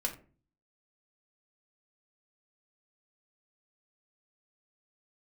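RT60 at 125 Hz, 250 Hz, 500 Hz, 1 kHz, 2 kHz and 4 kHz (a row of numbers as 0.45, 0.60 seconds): 0.70, 0.55, 0.45, 0.35, 0.30, 0.20 seconds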